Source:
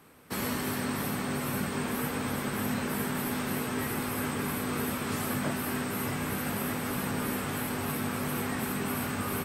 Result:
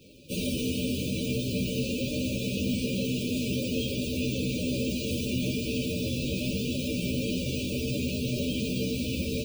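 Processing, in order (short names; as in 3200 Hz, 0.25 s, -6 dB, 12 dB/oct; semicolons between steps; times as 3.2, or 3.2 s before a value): inharmonic rescaling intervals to 126%; in parallel at -0.5 dB: limiter -34.5 dBFS, peak gain reduction 11 dB; on the sum: FFT band-reject 620–2300 Hz; gain +4 dB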